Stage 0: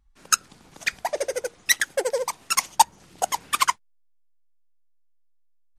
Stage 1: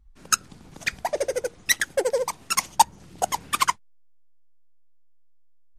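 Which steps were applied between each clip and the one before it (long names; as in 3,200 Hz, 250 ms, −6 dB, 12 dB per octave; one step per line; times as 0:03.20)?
low-shelf EQ 330 Hz +10.5 dB
level −1.5 dB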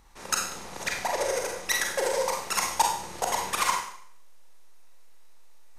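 compressor on every frequency bin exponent 0.6
four-comb reverb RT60 0.61 s, combs from 32 ms, DRR 0 dB
level −8.5 dB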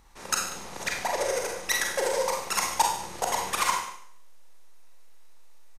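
single-tap delay 145 ms −16.5 dB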